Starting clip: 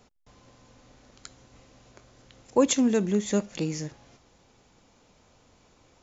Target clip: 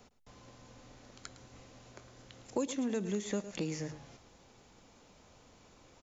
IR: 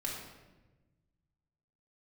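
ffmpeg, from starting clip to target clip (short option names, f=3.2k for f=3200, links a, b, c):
-filter_complex "[0:a]bandreject=f=50:t=h:w=6,bandreject=f=100:t=h:w=6,bandreject=f=150:t=h:w=6,aecho=1:1:108:0.168,acrossover=split=440|3000[a][b][c];[a]acompressor=threshold=-36dB:ratio=4[d];[b]acompressor=threshold=-41dB:ratio=4[e];[c]acompressor=threshold=-47dB:ratio=4[f];[d][e][f]amix=inputs=3:normalize=0"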